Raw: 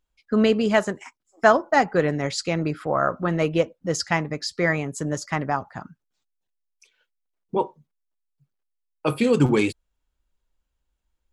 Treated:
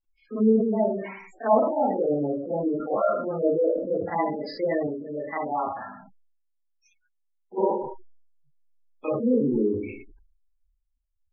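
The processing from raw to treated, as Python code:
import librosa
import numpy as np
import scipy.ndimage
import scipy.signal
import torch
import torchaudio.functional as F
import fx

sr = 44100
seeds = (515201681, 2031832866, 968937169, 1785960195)

y = fx.spec_steps(x, sr, hold_ms=50)
y = fx.peak_eq(y, sr, hz=150.0, db=-11.5, octaves=0.66)
y = fx.hum_notches(y, sr, base_hz=60, count=3)
y = y + 10.0 ** (-18.5 / 20.0) * np.pad(y, (int(123 * sr / 1000.0), 0))[:len(y)]
y = fx.rev_schroeder(y, sr, rt60_s=0.37, comb_ms=28, drr_db=-9.0)
y = fx.rider(y, sr, range_db=3, speed_s=0.5)
y = fx.env_lowpass_down(y, sr, base_hz=980.0, full_db=-14.5)
y = fx.spec_gate(y, sr, threshold_db=-15, keep='strong')
y = fx.low_shelf(y, sr, hz=300.0, db=-11.0, at=(4.87, 7.58))
y = fx.sustainer(y, sr, db_per_s=62.0)
y = F.gain(torch.from_numpy(y), -8.0).numpy()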